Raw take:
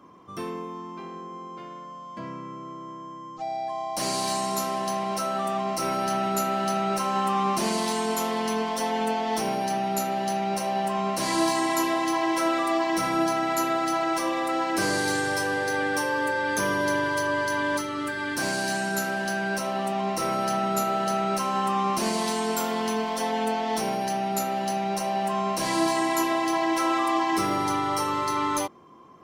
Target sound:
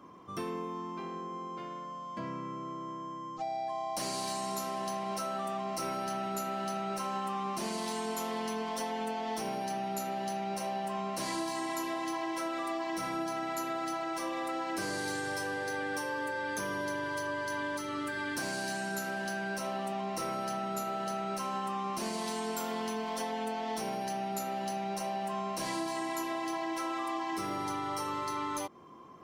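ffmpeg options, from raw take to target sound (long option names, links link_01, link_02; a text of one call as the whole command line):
ffmpeg -i in.wav -af "acompressor=threshold=-31dB:ratio=6,volume=-1.5dB" out.wav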